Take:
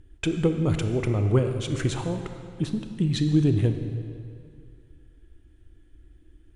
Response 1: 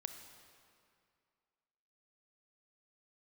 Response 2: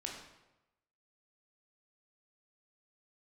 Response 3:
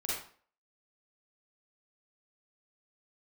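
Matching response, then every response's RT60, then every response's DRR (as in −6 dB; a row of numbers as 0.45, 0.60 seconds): 1; 2.3, 1.0, 0.45 seconds; 6.5, −1.0, −7.0 decibels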